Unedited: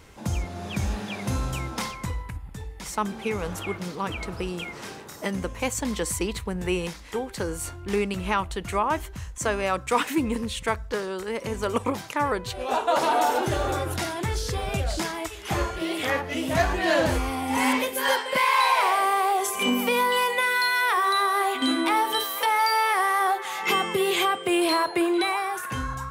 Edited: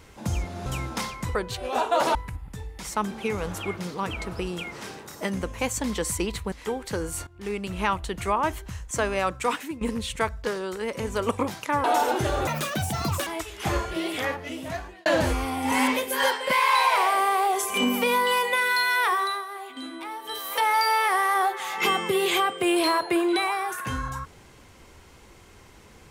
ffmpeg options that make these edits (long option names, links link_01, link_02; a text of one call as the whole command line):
ffmpeg -i in.wav -filter_complex "[0:a]asplit=13[link_01][link_02][link_03][link_04][link_05][link_06][link_07][link_08][link_09][link_10][link_11][link_12][link_13];[link_01]atrim=end=0.662[link_14];[link_02]atrim=start=1.468:end=2.162[link_15];[link_03]atrim=start=12.308:end=13.112[link_16];[link_04]atrim=start=2.158:end=6.532[link_17];[link_05]atrim=start=6.988:end=7.74,asetpts=PTS-STARTPTS,afade=type=out:start_time=0.748:duration=0.004:curve=hsin:silence=0.158489[link_18];[link_06]atrim=start=7.74:end=10.28,asetpts=PTS-STARTPTS,afade=type=in:duration=0.59:silence=0.158489,afade=type=out:start_time=2.06:duration=0.48:silence=0.141254[link_19];[link_07]atrim=start=10.28:end=12.312,asetpts=PTS-STARTPTS,afade=type=in:duration=0.004:curve=hsin:silence=0.141254[link_20];[link_08]atrim=start=13.108:end=13.744[link_21];[link_09]atrim=start=13.74:end=15.12,asetpts=PTS-STARTPTS,asetrate=76293,aresample=44100,atrim=end_sample=35178,asetpts=PTS-STARTPTS[link_22];[link_10]atrim=start=15.116:end=16.91,asetpts=PTS-STARTPTS,afade=type=out:start_time=0.724:duration=1.07[link_23];[link_11]atrim=start=16.91:end=21.31,asetpts=PTS-STARTPTS,afade=type=in:duration=0.004:curve=hsin,afade=type=out:start_time=4.03:duration=0.37:silence=0.211349[link_24];[link_12]atrim=start=21.31:end=22.09,asetpts=PTS-STARTPTS,volume=-13.5dB[link_25];[link_13]atrim=start=22.09,asetpts=PTS-STARTPTS,afade=type=in:duration=0.37:silence=0.211349[link_26];[link_14][link_15]acrossfade=duration=0.004:curve1=hsin:curve2=hsin[link_27];[link_27][link_16]acrossfade=duration=0.004:curve1=hsin:curve2=hsin[link_28];[link_28][link_17]acrossfade=duration=0.004:curve1=hsin:curve2=hsin[link_29];[link_18][link_19][link_20]concat=n=3:v=0:a=1[link_30];[link_29][link_30]acrossfade=duration=0.004:curve1=hsin:curve2=hsin[link_31];[link_31][link_21]acrossfade=duration=0.004:curve1=hsin:curve2=hsin[link_32];[link_32][link_22]acrossfade=duration=0.004:curve1=hsin:curve2=hsin[link_33];[link_23][link_24][link_25][link_26]concat=n=4:v=0:a=1[link_34];[link_33][link_34]acrossfade=duration=0.004:curve1=hsin:curve2=hsin" out.wav